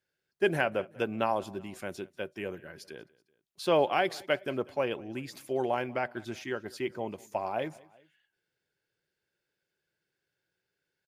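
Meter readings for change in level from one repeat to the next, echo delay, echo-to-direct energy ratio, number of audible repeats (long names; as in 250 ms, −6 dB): −5.0 dB, 190 ms, −22.5 dB, 2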